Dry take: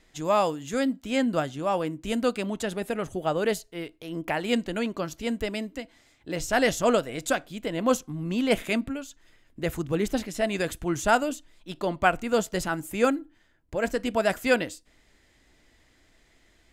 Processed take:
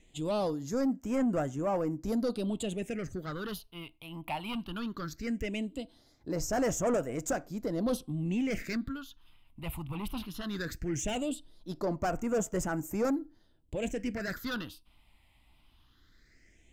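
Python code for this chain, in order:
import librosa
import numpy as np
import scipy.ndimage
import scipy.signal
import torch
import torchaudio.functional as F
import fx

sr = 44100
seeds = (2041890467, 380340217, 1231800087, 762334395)

y = 10.0 ** (-24.5 / 20.0) * np.tanh(x / 10.0 ** (-24.5 / 20.0))
y = fx.phaser_stages(y, sr, stages=6, low_hz=430.0, high_hz=3800.0, hz=0.18, feedback_pct=35)
y = y * librosa.db_to_amplitude(-1.0)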